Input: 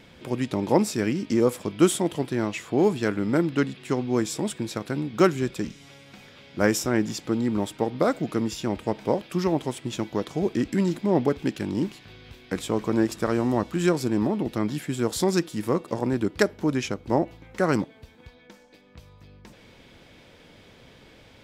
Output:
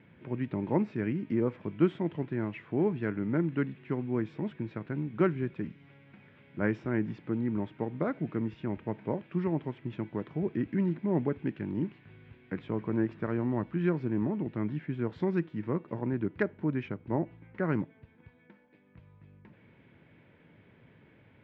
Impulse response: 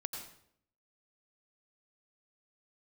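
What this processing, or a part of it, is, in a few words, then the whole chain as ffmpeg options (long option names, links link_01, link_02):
bass cabinet: -af "highpass=86,equalizer=frequency=110:width_type=q:width=4:gain=5,equalizer=frequency=160:width_type=q:width=4:gain=5,equalizer=frequency=510:width_type=q:width=4:gain=-5,equalizer=frequency=740:width_type=q:width=4:gain=-6,equalizer=frequency=1200:width_type=q:width=4:gain=-5,lowpass=frequency=2300:width=0.5412,lowpass=frequency=2300:width=1.3066,volume=-6.5dB"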